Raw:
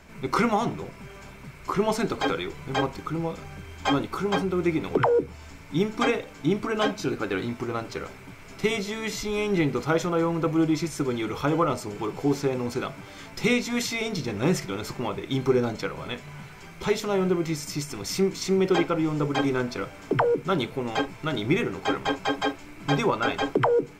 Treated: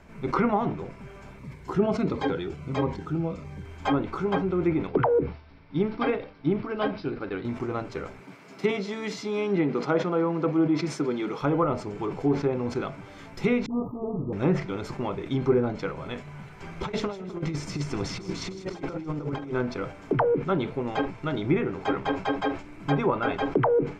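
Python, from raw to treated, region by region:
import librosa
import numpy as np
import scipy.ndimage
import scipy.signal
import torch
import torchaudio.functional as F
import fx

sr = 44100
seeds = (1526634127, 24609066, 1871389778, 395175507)

y = fx.chain(x, sr, fx.highpass(hz=49.0, slope=12),
    fx.low_shelf(hz=320.0, db=3.0),
    fx.notch_cascade(direction='falling', hz=1.5), at=(1.39, 3.66))
y = fx.chain(y, sr, fx.resample_bad(factor=4, down='none', up='filtered'),
    fx.upward_expand(threshold_db=-33.0, expansion=1.5), at=(4.87, 7.45))
y = fx.chain(y, sr, fx.highpass(hz=160.0, slope=24),
    fx.peak_eq(hz=4700.0, db=4.5, octaves=0.54), at=(8.21, 11.42))
y = fx.chain(y, sr, fx.brickwall_bandstop(low_hz=1300.0, high_hz=13000.0),
    fx.high_shelf(hz=11000.0, db=-10.0),
    fx.dispersion(late='highs', ms=47.0, hz=440.0), at=(13.66, 14.33))
y = fx.chain(y, sr, fx.high_shelf(hz=9200.0, db=-7.5),
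    fx.over_compress(threshold_db=-30.0, ratio=-0.5),
    fx.echo_split(split_hz=1800.0, low_ms=255, high_ms=157, feedback_pct=52, wet_db=-15.0), at=(16.6, 19.53))
y = fx.env_lowpass_down(y, sr, base_hz=2300.0, full_db=-18.5)
y = fx.high_shelf(y, sr, hz=2300.0, db=-10.0)
y = fx.sustainer(y, sr, db_per_s=130.0)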